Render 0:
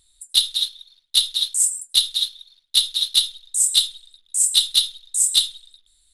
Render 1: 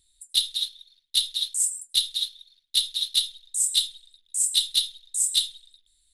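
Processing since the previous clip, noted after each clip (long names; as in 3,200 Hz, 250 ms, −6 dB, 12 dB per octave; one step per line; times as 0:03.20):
flat-topped bell 820 Hz −9 dB
level −5.5 dB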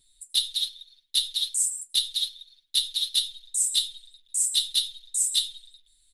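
comb filter 7.2 ms, depth 80%
downward compressor 2 to 1, threshold −23 dBFS, peak gain reduction 5.5 dB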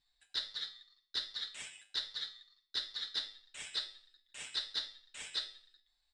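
in parallel at −7 dB: decimation without filtering 8×
on the sum: transistor ladder low-pass 5,500 Hz, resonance 65%
tuned comb filter 52 Hz, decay 0.5 s, harmonics odd, mix 70%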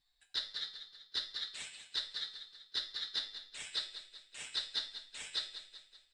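repeating echo 192 ms, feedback 50%, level −11.5 dB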